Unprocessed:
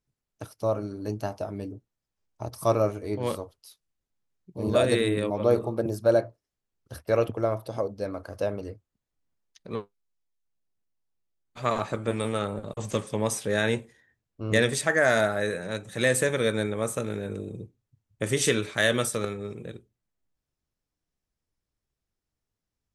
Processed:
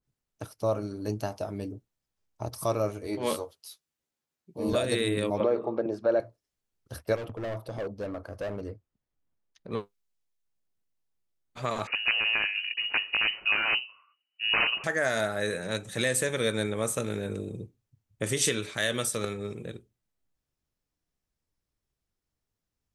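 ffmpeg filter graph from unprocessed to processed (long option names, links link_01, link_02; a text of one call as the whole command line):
ffmpeg -i in.wav -filter_complex "[0:a]asettb=1/sr,asplit=3[link_01][link_02][link_03];[link_01]atrim=end=3.074[link_04];[link_02]atrim=start=3.07:end=4.73,asetpts=PTS-STARTPTS,afade=type=in:duration=0.004:curve=qsin,afade=type=out:start_time=1.656:duration=0.004:curve=qsin,highpass=frequency=240:poles=1,asplit=2[link_05][link_06];[link_06]adelay=13,volume=-3.5dB[link_07];[link_05][link_07]amix=inputs=2:normalize=0,atrim=end_sample=73206[link_08];[link_03]atrim=start=4.726[link_09];[link_04][link_08]acrossfade=duration=0.004:curve1=hsin:curve2=qsin[link_10];[link_10][link_09]acrossfade=duration=0.004:curve1=qsin:curve2=hsin,asettb=1/sr,asplit=3[link_11][link_12][link_13];[link_11]atrim=end=5.404[link_14];[link_12]atrim=start=5.4:end=6.2,asetpts=PTS-STARTPTS,afade=type=in:duration=0.004:curve=qsin,afade=type=out:start_time=0.796:duration=0.004:curve=qsin,highpass=260,lowpass=2200,acontrast=62[link_15];[link_13]atrim=start=6.196[link_16];[link_14][link_15]acrossfade=duration=0.004:curve1=hsin:curve2=qsin[link_17];[link_17][link_16]acrossfade=duration=0.004:curve1=qsin:curve2=hsin,asettb=1/sr,asplit=3[link_18][link_19][link_20];[link_18]atrim=end=7.164[link_21];[link_19]atrim=start=7.16:end=9.72,asetpts=PTS-STARTPTS,afade=type=in:duration=0.004:curve=qsin,afade=type=out:start_time=2.556:duration=0.004:curve=qsin,asoftclip=type=hard:threshold=-29.5dB,highshelf=frequency=2800:gain=-10.5[link_22];[link_20]atrim=start=9.716[link_23];[link_21][link_22]acrossfade=duration=0.004:curve1=hsin:curve2=qsin[link_24];[link_24][link_23]acrossfade=duration=0.004:curve1=qsin:curve2=hsin,asettb=1/sr,asplit=3[link_25][link_26][link_27];[link_25]atrim=end=11.874[link_28];[link_26]atrim=start=11.87:end=14.84,asetpts=PTS-STARTPTS,afade=type=in:duration=0.004:curve=qsin,afade=type=out:start_time=2.966:duration=0.004:curve=qsin,bandreject=frequency=50:width_type=h:width=6,bandreject=frequency=100:width_type=h:width=6,bandreject=frequency=150:width_type=h:width=6,bandreject=frequency=200:width_type=h:width=6,bandreject=frequency=250:width_type=h:width=6,bandreject=frequency=300:width_type=h:width=6,bandreject=frequency=350:width_type=h:width=6,aeval=exprs='(mod(7.08*val(0)+1,2)-1)/7.08':channel_layout=same,lowpass=frequency=2600:width_type=q:width=0.5098,lowpass=frequency=2600:width_type=q:width=0.6013,lowpass=frequency=2600:width_type=q:width=0.9,lowpass=frequency=2600:width_type=q:width=2.563,afreqshift=-3000[link_29];[link_27]atrim=start=14.836[link_30];[link_28][link_29]acrossfade=duration=0.004:curve1=hsin:curve2=qsin[link_31];[link_31][link_30]acrossfade=duration=0.004:curve1=qsin:curve2=hsin,alimiter=limit=-16.5dB:level=0:latency=1:release=438,adynamicequalizer=threshold=0.00708:dfrequency=2300:dqfactor=0.7:tfrequency=2300:tqfactor=0.7:attack=5:release=100:ratio=0.375:range=2.5:mode=boostabove:tftype=highshelf" out.wav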